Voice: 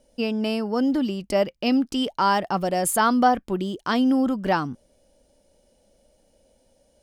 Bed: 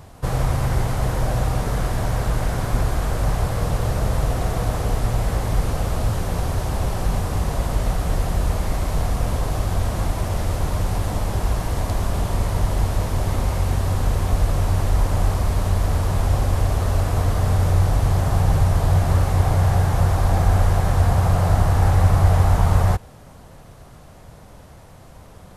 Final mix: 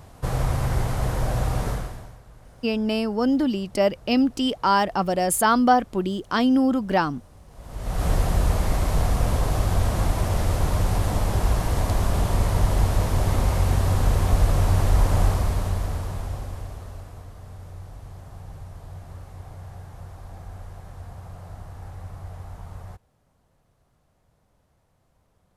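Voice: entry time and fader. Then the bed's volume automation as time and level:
2.45 s, +1.0 dB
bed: 1.7 s -3 dB
2.22 s -27 dB
7.47 s -27 dB
8.04 s 0 dB
15.22 s 0 dB
17.31 s -22.5 dB

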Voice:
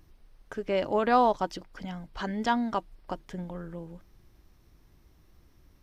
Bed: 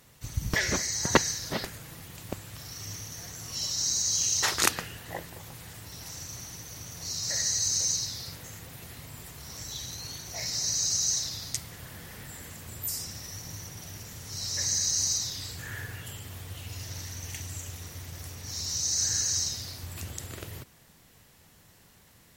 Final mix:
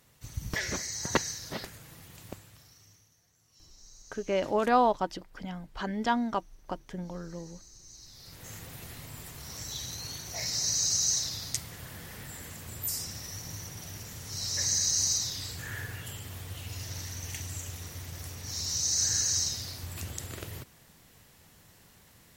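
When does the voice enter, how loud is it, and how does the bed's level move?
3.60 s, -1.0 dB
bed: 2.27 s -5.5 dB
3.22 s -27.5 dB
7.82 s -27.5 dB
8.51 s 0 dB

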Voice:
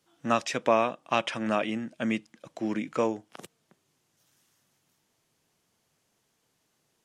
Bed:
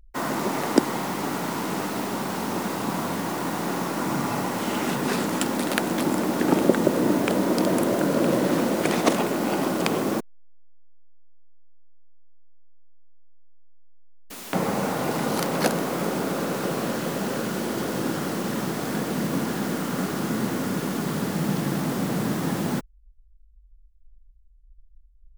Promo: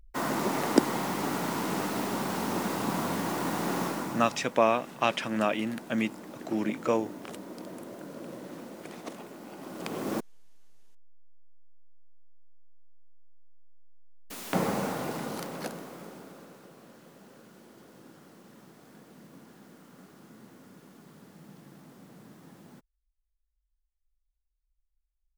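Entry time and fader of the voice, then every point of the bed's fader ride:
3.90 s, 0.0 dB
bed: 3.86 s -3 dB
4.53 s -20.5 dB
9.56 s -20.5 dB
10.29 s -2.5 dB
14.57 s -2.5 dB
16.71 s -26 dB

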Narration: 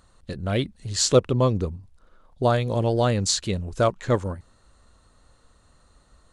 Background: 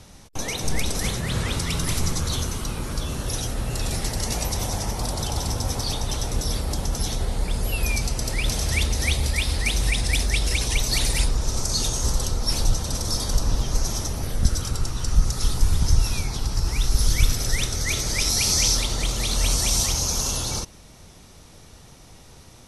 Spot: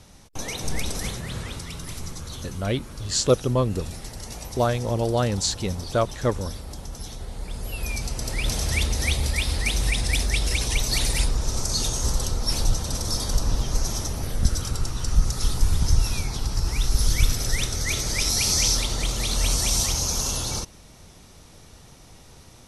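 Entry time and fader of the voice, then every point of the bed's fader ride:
2.15 s, -1.5 dB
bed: 0.91 s -3 dB
1.76 s -10.5 dB
7.17 s -10.5 dB
8.52 s -1 dB

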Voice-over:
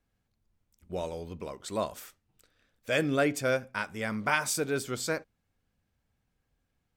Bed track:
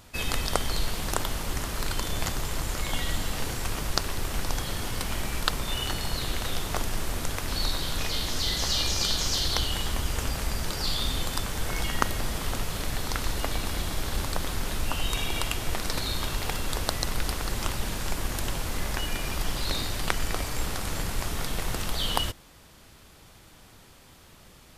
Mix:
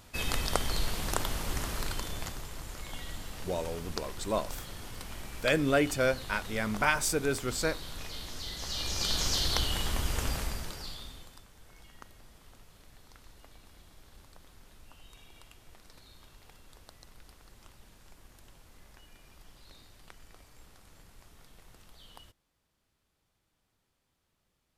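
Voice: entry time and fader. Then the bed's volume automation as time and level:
2.55 s, +0.5 dB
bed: 1.71 s -3 dB
2.51 s -12 dB
8.57 s -12 dB
9.19 s -2.5 dB
10.35 s -2.5 dB
11.48 s -26 dB

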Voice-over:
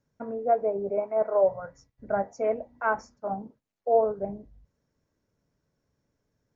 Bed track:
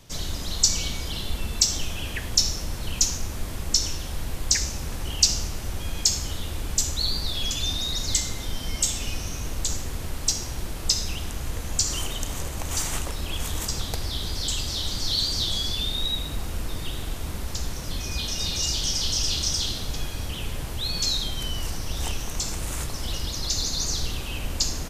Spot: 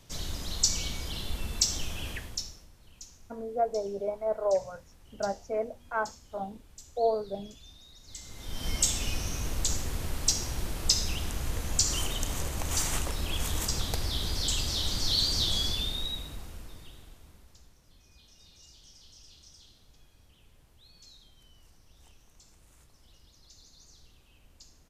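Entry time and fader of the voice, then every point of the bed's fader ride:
3.10 s, -4.5 dB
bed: 2.11 s -5.5 dB
2.72 s -26 dB
8.02 s -26 dB
8.67 s -2 dB
15.64 s -2 dB
17.79 s -29.5 dB

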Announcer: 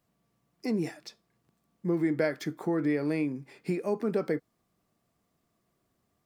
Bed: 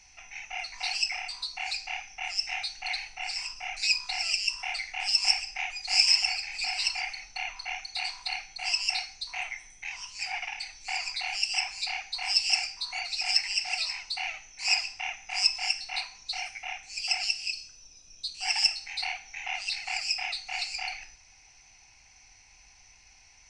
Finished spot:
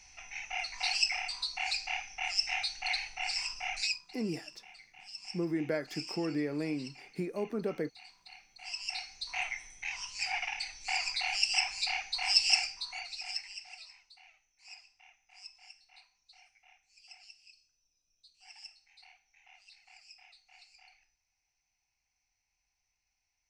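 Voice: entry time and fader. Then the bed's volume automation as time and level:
3.50 s, -5.5 dB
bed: 3.81 s -0.5 dB
4.05 s -21 dB
8.24 s -21 dB
9.38 s -0.5 dB
12.53 s -0.5 dB
14.23 s -26 dB

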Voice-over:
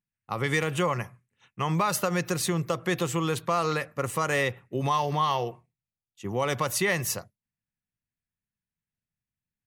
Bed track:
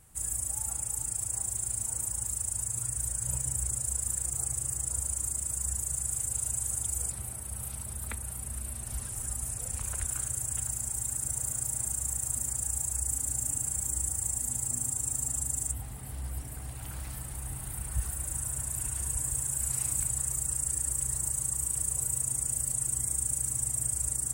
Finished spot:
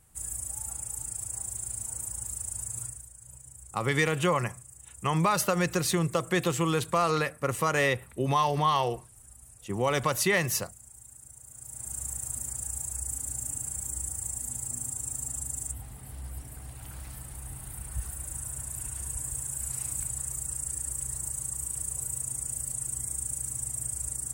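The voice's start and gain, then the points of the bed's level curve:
3.45 s, +0.5 dB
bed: 2.84 s -3 dB
3.08 s -17 dB
11.46 s -17 dB
11.97 s -3 dB

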